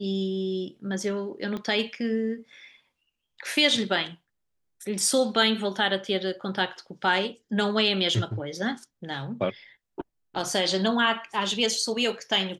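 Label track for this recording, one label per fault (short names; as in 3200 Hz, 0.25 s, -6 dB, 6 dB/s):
1.570000	1.570000	pop -22 dBFS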